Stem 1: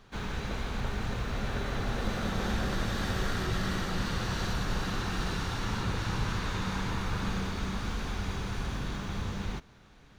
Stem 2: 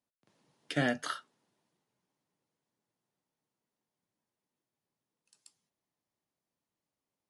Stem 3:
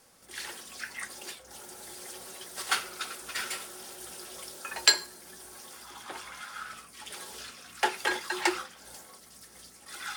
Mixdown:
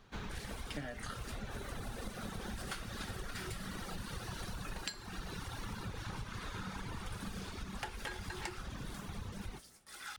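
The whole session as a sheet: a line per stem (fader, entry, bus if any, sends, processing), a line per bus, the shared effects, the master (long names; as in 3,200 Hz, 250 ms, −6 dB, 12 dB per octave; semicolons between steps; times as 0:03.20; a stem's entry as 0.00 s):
−4.5 dB, 0.00 s, no send, reverb reduction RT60 1.8 s
−5.5 dB, 0.00 s, no send, comb filter 6.6 ms, depth 72%
−8.0 dB, 0.00 s, no send, noise gate with hold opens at −41 dBFS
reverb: not used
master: downward compressor 16 to 1, threshold −38 dBFS, peak gain reduction 17 dB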